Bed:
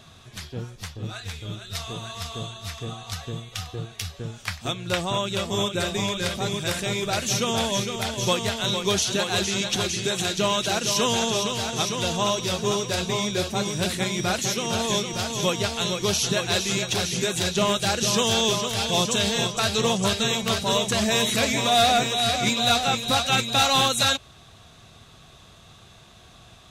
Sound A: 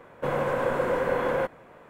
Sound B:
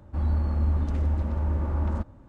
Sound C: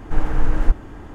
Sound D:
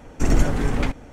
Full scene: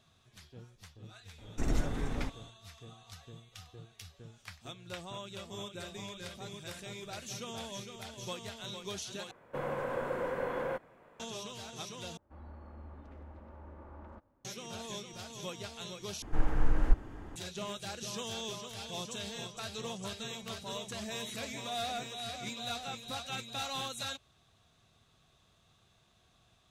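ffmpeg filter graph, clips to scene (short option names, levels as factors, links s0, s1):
-filter_complex "[0:a]volume=0.126[s0];[2:a]bass=f=250:g=-12,treble=f=4000:g=-13[s1];[s0]asplit=4[s2][s3][s4][s5];[s2]atrim=end=9.314[s6];[1:a]atrim=end=1.89,asetpts=PTS-STARTPTS,volume=0.335[s7];[s3]atrim=start=11.196:end=12.174[s8];[s1]atrim=end=2.28,asetpts=PTS-STARTPTS,volume=0.188[s9];[s4]atrim=start=14.446:end=16.224[s10];[3:a]atrim=end=1.14,asetpts=PTS-STARTPTS,volume=0.355[s11];[s5]atrim=start=17.356[s12];[4:a]atrim=end=1.12,asetpts=PTS-STARTPTS,volume=0.224,afade=t=in:d=0.004:c=hsin,afade=t=out:st=1.116:d=0.004:c=hsin,adelay=1380[s13];[s6][s7]acrossfade=d=0.004:c1=hsin:c2=hsin[s14];[s14][s8]acrossfade=d=0.004:c1=hsin:c2=hsin[s15];[s15][s9]acrossfade=d=0.004:c1=hsin:c2=hsin[s16];[s16][s10]acrossfade=d=0.004:c1=hsin:c2=hsin[s17];[s17][s11]acrossfade=d=0.004:c1=hsin:c2=hsin[s18];[s18][s12]acrossfade=d=0.004:c1=hsin:c2=hsin[s19];[s19][s13]amix=inputs=2:normalize=0"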